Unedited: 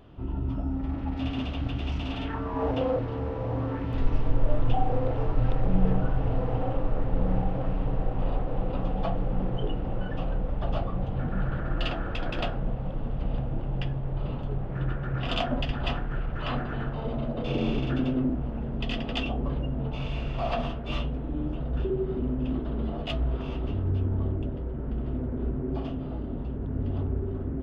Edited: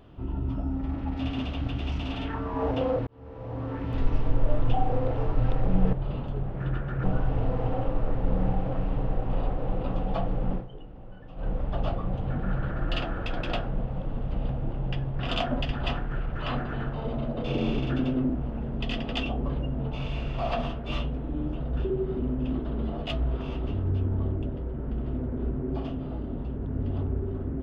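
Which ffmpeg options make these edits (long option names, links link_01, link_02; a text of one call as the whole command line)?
ffmpeg -i in.wav -filter_complex "[0:a]asplit=7[link_01][link_02][link_03][link_04][link_05][link_06][link_07];[link_01]atrim=end=3.07,asetpts=PTS-STARTPTS,afade=type=out:start_time=3.066:duration=0.004:curve=hsin[link_08];[link_02]atrim=start=3.07:end=5.932,asetpts=PTS-STARTPTS,afade=type=in:duration=0.85[link_09];[link_03]atrim=start=14.078:end=15.192[link_10];[link_04]atrim=start=5.928:end=9.55,asetpts=PTS-STARTPTS,afade=type=out:start_time=3.492:duration=0.13:silence=0.188365[link_11];[link_05]atrim=start=9.55:end=10.24,asetpts=PTS-STARTPTS,volume=-14.5dB[link_12];[link_06]atrim=start=10.24:end=14.082,asetpts=PTS-STARTPTS,afade=type=in:duration=0.13:silence=0.188365[link_13];[link_07]atrim=start=15.188[link_14];[link_08][link_09]concat=n=2:v=0:a=1[link_15];[link_15][link_10]acrossfade=duration=0.004:curve1=hsin:curve2=hsin[link_16];[link_11][link_12][link_13]concat=n=3:v=0:a=1[link_17];[link_16][link_17]acrossfade=duration=0.004:curve1=hsin:curve2=hsin[link_18];[link_18][link_14]acrossfade=duration=0.004:curve1=hsin:curve2=hsin" out.wav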